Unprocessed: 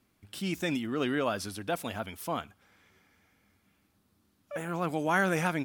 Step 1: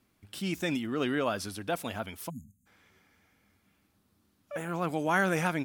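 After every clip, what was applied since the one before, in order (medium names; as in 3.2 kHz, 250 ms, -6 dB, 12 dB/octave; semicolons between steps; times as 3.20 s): spectral selection erased 2.29–2.67 s, 260–6200 Hz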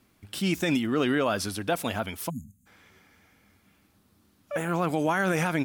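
peak limiter -21.5 dBFS, peak gain reduction 9 dB; trim +6.5 dB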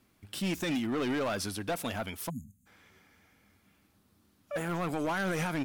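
hard clipper -24 dBFS, distortion -10 dB; trim -3.5 dB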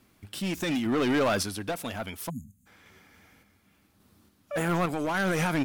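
random-step tremolo 3.5 Hz; trim +7 dB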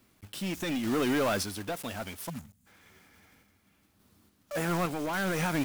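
block-companded coder 3-bit; trim -3 dB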